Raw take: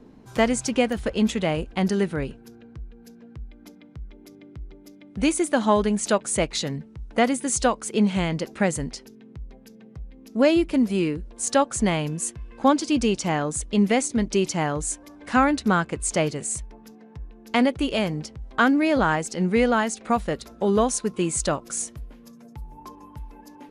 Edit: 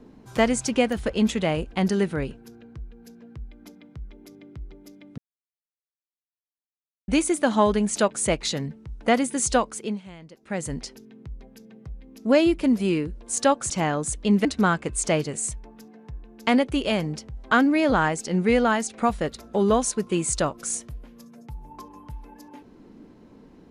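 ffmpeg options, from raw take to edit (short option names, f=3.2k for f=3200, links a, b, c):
-filter_complex "[0:a]asplit=6[a][b][c][d][e][f];[a]atrim=end=5.18,asetpts=PTS-STARTPTS,afade=t=out:st=5.176:d=0.004:c=hsin,apad=pad_dur=1.9[g];[b]atrim=start=5.18:end=8.12,asetpts=PTS-STARTPTS,afade=t=in:d=0.004:c=hsin,afade=t=out:st=2.55:d=0.39:silence=0.112202[h];[c]atrim=start=8.12:end=8.51,asetpts=PTS-STARTPTS,volume=-19dB[i];[d]atrim=start=8.51:end=11.802,asetpts=PTS-STARTPTS,afade=t=in:d=0.39:silence=0.112202[j];[e]atrim=start=13.178:end=13.932[k];[f]atrim=start=15.518[l];[g][h][i][j]concat=n=4:v=0:a=1[m];[m][k]acrossfade=d=0.004:c1=hsin:c2=hsin[n];[n][l]acrossfade=d=0.004:c1=hsin:c2=hsin"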